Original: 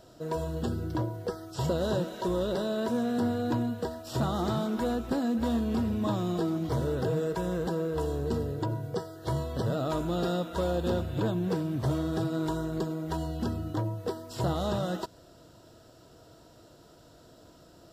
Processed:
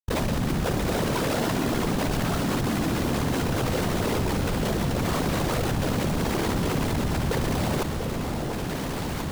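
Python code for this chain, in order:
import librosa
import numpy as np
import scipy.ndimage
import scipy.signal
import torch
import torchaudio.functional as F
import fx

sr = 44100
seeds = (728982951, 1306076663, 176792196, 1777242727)

p1 = scipy.signal.sosfilt(scipy.signal.butter(2, 66.0, 'highpass', fs=sr, output='sos'), x)
p2 = fx.low_shelf(p1, sr, hz=310.0, db=8.5)
p3 = fx.rider(p2, sr, range_db=5, speed_s=0.5)
p4 = p2 + (p3 * librosa.db_to_amplitude(3.0))
p5 = fx.schmitt(p4, sr, flips_db=-30.0)
p6 = fx.whisperise(p5, sr, seeds[0])
p7 = fx.filter_lfo_notch(p6, sr, shape='sine', hz=8.2, low_hz=270.0, high_hz=2500.0, q=2.2)
p8 = fx.stretch_grains(p7, sr, factor=0.52, grain_ms=28.0)
p9 = fx.echo_alternate(p8, sr, ms=692, hz=860.0, feedback_pct=80, wet_db=-13.5)
p10 = fx.env_flatten(p9, sr, amount_pct=70)
y = p10 * librosa.db_to_amplitude(-7.0)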